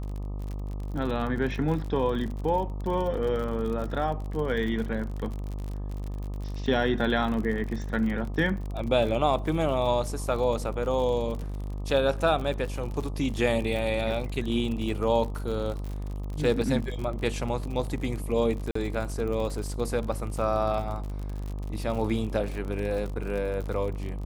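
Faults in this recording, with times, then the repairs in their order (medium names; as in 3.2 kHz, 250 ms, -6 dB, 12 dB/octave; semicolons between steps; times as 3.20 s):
buzz 50 Hz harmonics 25 -33 dBFS
crackle 48 per s -33 dBFS
18.71–18.75 s: dropout 44 ms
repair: de-click; de-hum 50 Hz, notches 25; interpolate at 18.71 s, 44 ms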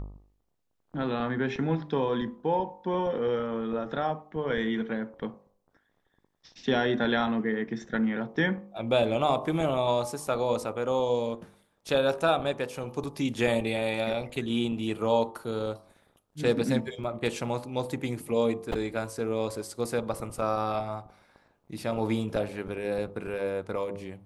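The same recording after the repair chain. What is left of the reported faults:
nothing left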